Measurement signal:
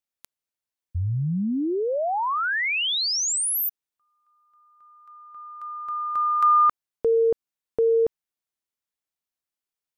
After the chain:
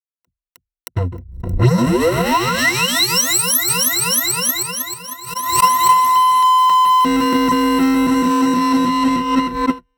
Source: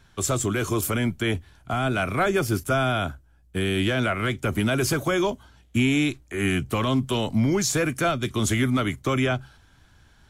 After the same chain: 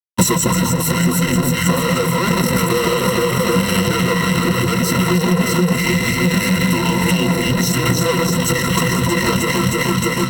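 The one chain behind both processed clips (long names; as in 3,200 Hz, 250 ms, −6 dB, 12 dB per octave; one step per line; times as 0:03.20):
in parallel at +1 dB: downward compressor 5 to 1, threshold −36 dBFS
on the sum: frequency shifter −190 Hz
low shelf with overshoot 100 Hz −13 dB, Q 3
on a send: delay that swaps between a low-pass and a high-pass 156 ms, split 1,300 Hz, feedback 86%, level −4 dB
on the sum: fuzz pedal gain 39 dB, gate −36 dBFS
notch comb filter 740 Hz
noise gate −17 dBFS, range −41 dB
EQ curve with evenly spaced ripples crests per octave 2, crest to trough 16 dB
brickwall limiter −7 dBFS
transient designer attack +8 dB, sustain −2 dB
background raised ahead of every attack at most 72 dB per second
level −2 dB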